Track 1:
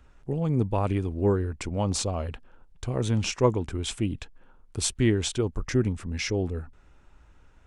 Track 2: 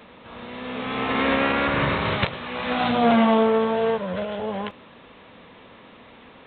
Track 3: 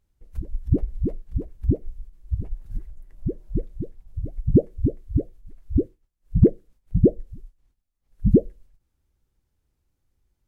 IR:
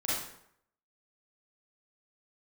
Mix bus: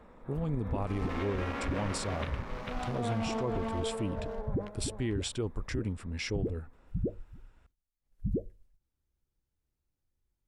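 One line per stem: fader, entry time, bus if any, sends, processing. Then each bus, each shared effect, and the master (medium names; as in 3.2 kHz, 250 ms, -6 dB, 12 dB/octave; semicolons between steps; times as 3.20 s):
-5.5 dB, 0.00 s, no send, no echo send, band-stop 6.3 kHz, Q 6.3
-7.5 dB, 0.00 s, no send, echo send -11.5 dB, local Wiener filter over 15 samples; auto duck -7 dB, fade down 1.45 s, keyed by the first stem
-10.0 dB, 0.00 s, no send, no echo send, hum notches 50/100 Hz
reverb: none
echo: delay 446 ms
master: peak limiter -24 dBFS, peak gain reduction 11.5 dB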